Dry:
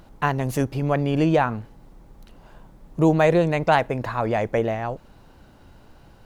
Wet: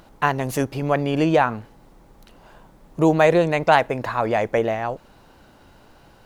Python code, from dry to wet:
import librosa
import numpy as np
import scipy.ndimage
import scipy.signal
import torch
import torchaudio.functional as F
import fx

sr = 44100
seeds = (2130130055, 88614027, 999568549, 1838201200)

y = fx.low_shelf(x, sr, hz=220.0, db=-8.5)
y = y * 10.0 ** (3.5 / 20.0)